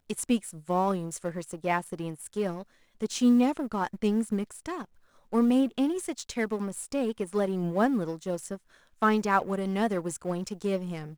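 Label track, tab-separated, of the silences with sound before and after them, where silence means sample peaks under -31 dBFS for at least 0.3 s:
2.610000	3.020000	silence
4.820000	5.330000	silence
8.550000	9.020000	silence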